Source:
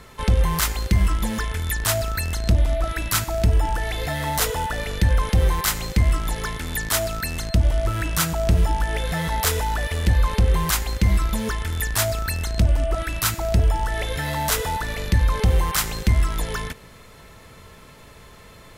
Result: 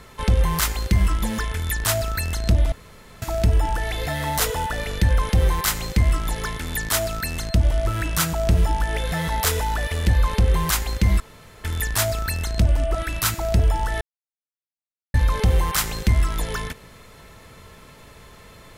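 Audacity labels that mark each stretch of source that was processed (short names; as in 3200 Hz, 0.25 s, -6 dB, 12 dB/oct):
2.720000	3.220000	room tone
11.200000	11.640000	room tone
14.010000	15.140000	mute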